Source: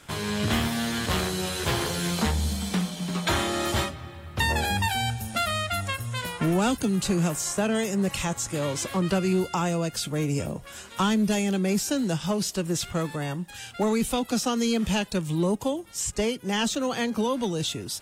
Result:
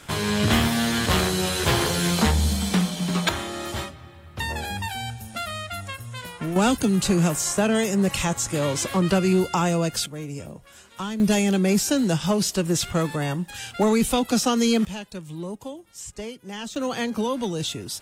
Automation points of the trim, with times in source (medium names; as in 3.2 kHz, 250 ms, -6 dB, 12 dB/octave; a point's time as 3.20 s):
+5 dB
from 3.29 s -4.5 dB
from 6.56 s +4 dB
from 10.06 s -7 dB
from 11.20 s +4.5 dB
from 14.85 s -8.5 dB
from 16.76 s +0.5 dB